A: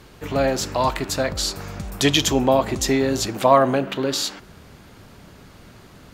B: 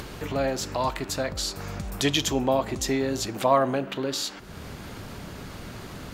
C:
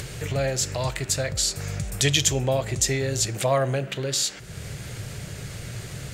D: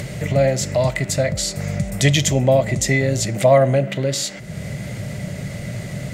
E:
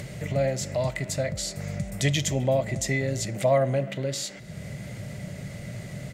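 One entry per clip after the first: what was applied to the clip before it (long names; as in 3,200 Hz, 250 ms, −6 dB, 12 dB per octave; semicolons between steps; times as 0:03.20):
upward compression, threshold −20 dBFS; level −6 dB
graphic EQ with 10 bands 125 Hz +12 dB, 250 Hz −10 dB, 500 Hz +4 dB, 1,000 Hz −9 dB, 2,000 Hz +5 dB, 8,000 Hz +11 dB
hollow resonant body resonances 200/590/2,000 Hz, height 14 dB, ringing for 25 ms
far-end echo of a speakerphone 260 ms, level −21 dB; level −8.5 dB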